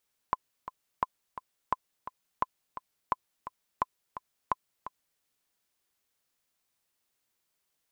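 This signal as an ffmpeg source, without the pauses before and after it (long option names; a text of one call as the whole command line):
ffmpeg -f lavfi -i "aevalsrc='pow(10,(-12.5-12.5*gte(mod(t,2*60/172),60/172))/20)*sin(2*PI*1020*mod(t,60/172))*exp(-6.91*mod(t,60/172)/0.03)':duration=4.88:sample_rate=44100" out.wav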